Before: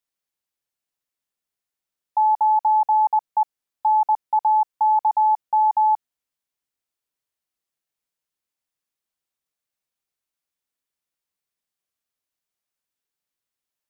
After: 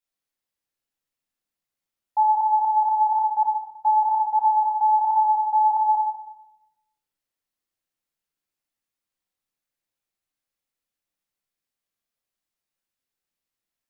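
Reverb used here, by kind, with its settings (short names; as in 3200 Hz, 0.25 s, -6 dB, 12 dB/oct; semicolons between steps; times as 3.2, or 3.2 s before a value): shoebox room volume 420 m³, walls mixed, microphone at 2.2 m; gain -6 dB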